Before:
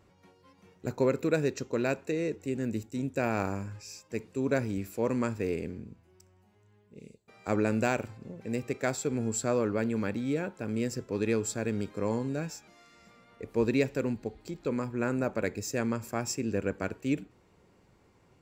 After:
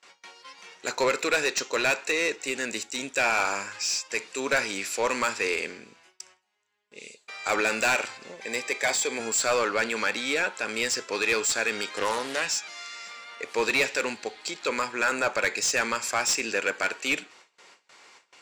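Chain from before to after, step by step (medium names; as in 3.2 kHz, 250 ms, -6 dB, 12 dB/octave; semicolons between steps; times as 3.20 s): gate with hold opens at -53 dBFS; frequency weighting ITU-R 468; overdrive pedal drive 24 dB, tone 3.2 kHz, clips at -9 dBFS; 8.36–9.20 s: comb of notches 1.4 kHz; 11.90–12.48 s: loudspeaker Doppler distortion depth 0.26 ms; trim -2.5 dB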